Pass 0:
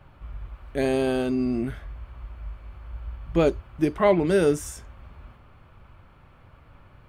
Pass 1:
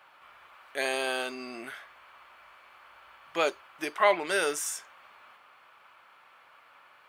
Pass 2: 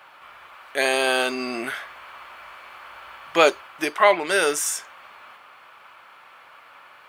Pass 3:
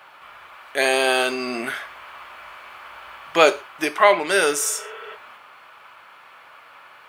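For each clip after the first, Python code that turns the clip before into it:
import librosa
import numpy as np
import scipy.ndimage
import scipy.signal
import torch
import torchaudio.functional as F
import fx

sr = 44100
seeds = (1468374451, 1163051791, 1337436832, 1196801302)

y1 = scipy.signal.sosfilt(scipy.signal.butter(2, 1000.0, 'highpass', fs=sr, output='sos'), x)
y1 = y1 * 10.0 ** (4.5 / 20.0)
y2 = fx.rider(y1, sr, range_db=3, speed_s=0.5)
y2 = y2 * 10.0 ** (9.0 / 20.0)
y3 = fx.spec_repair(y2, sr, seeds[0], start_s=4.62, length_s=0.51, low_hz=370.0, high_hz=3500.0, source='before')
y3 = fx.rev_gated(y3, sr, seeds[1], gate_ms=150, shape='falling', drr_db=12.0)
y3 = y3 * 10.0 ** (1.5 / 20.0)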